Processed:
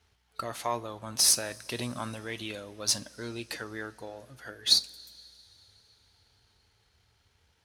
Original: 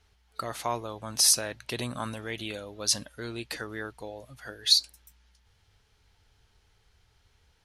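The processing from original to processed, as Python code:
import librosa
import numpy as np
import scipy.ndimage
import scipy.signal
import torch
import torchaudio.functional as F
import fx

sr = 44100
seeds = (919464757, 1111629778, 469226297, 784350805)

y = np.where(x < 0.0, 10.0 ** (-3.0 / 20.0) * x, x)
y = scipy.signal.sosfilt(scipy.signal.butter(2, 66.0, 'highpass', fs=sr, output='sos'), y)
y = fx.rev_double_slope(y, sr, seeds[0], early_s=0.27, late_s=4.0, knee_db=-18, drr_db=14.5)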